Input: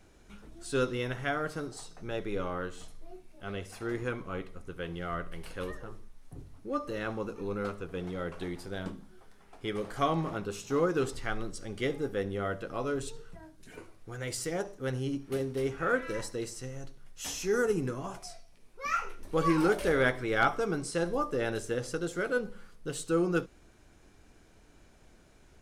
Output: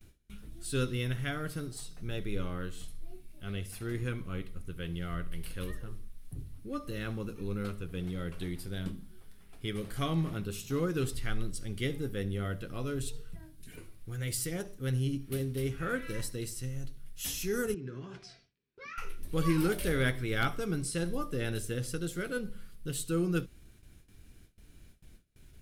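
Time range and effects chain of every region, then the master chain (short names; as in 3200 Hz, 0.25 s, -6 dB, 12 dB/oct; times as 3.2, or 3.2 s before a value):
17.74–18.98 compressor 10:1, threshold -38 dBFS + speaker cabinet 110–5200 Hz, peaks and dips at 400 Hz +9 dB, 660 Hz -5 dB, 1600 Hz +7 dB
whole clip: bell 6500 Hz -12 dB 1.3 oct; gate with hold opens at -49 dBFS; EQ curve 130 Hz 0 dB, 840 Hz -17 dB, 3600 Hz +1 dB, 12000 Hz +8 dB; gain +5.5 dB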